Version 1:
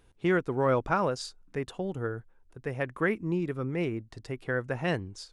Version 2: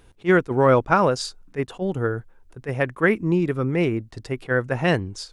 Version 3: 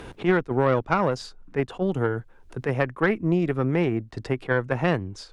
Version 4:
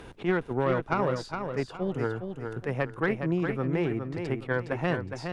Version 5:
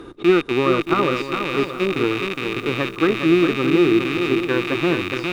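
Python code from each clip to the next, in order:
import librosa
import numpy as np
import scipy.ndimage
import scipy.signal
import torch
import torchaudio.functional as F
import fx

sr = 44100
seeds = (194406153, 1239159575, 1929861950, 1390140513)

y1 = fx.attack_slew(x, sr, db_per_s=450.0)
y1 = y1 * librosa.db_to_amplitude(9.0)
y2 = fx.cheby_harmonics(y1, sr, harmonics=(4,), levels_db=(-19,), full_scale_db=-4.5)
y2 = fx.high_shelf(y2, sr, hz=5900.0, db=-11.5)
y2 = fx.band_squash(y2, sr, depth_pct=70)
y2 = y2 * librosa.db_to_amplitude(-3.0)
y3 = fx.echo_feedback(y2, sr, ms=413, feedback_pct=30, wet_db=-6.5)
y3 = y3 * librosa.db_to_amplitude(-5.5)
y4 = fx.rattle_buzz(y3, sr, strikes_db=-41.0, level_db=-16.0)
y4 = fx.small_body(y4, sr, hz=(330.0, 1200.0, 3700.0), ring_ms=30, db=16)
y4 = fx.echo_crushed(y4, sr, ms=624, feedback_pct=35, bits=7, wet_db=-11.0)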